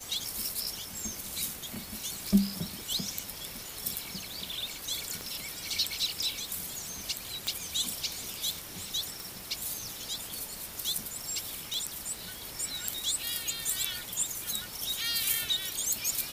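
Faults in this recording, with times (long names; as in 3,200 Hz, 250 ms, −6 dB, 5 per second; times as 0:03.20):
surface crackle 54 per second −42 dBFS
0:05.21: click −23 dBFS
0:07.47: click −15 dBFS
0:09.20: click
0:11.74: click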